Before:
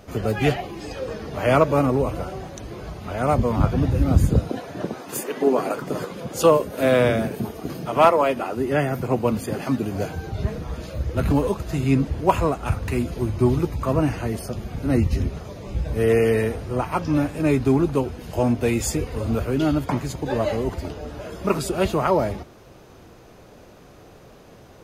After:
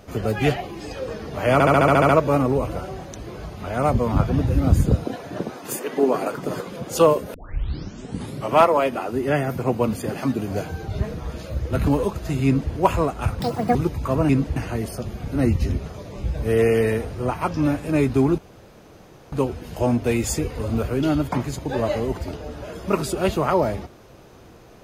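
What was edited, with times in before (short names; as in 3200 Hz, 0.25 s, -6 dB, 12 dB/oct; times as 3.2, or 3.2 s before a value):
1.53 stutter 0.07 s, 9 plays
6.78 tape start 1.21 s
11.9–12.17 copy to 14.07
12.84–13.53 speed 196%
17.89 insert room tone 0.94 s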